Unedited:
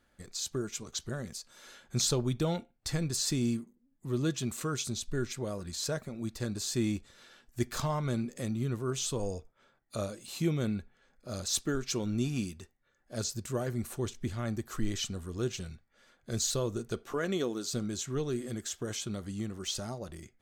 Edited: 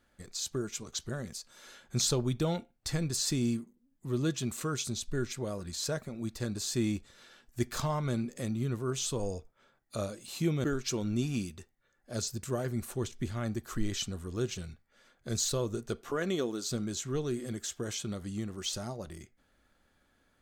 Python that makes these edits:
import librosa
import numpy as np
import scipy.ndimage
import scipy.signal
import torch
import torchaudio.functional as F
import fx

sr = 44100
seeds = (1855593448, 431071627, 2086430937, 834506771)

y = fx.edit(x, sr, fx.cut(start_s=10.64, length_s=1.02), tone=tone)